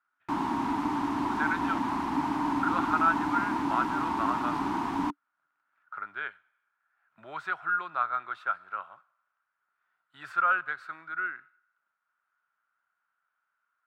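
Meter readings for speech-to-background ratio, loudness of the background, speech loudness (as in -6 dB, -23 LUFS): -1.0 dB, -30.5 LUFS, -31.5 LUFS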